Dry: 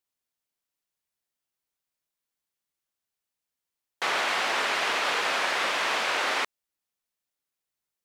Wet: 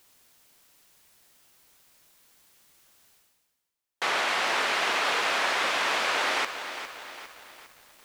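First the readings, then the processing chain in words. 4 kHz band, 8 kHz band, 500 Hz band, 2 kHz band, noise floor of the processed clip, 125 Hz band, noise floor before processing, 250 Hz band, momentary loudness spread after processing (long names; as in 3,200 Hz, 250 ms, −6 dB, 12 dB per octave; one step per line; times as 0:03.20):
+0.5 dB, +0.5 dB, +0.5 dB, +0.5 dB, −79 dBFS, can't be measured, below −85 dBFS, +0.5 dB, 15 LU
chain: reversed playback
upward compression, threshold −39 dBFS
reversed playback
feedback echo at a low word length 405 ms, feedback 55%, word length 8 bits, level −10 dB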